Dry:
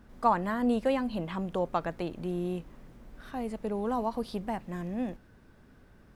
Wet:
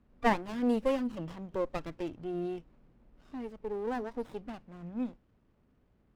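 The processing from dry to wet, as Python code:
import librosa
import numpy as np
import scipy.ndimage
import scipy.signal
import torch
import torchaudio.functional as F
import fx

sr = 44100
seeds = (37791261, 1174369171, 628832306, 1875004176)

y = fx.noise_reduce_blind(x, sr, reduce_db=11)
y = fx.env_lowpass(y, sr, base_hz=2800.0, full_db=-23.0)
y = fx.running_max(y, sr, window=17)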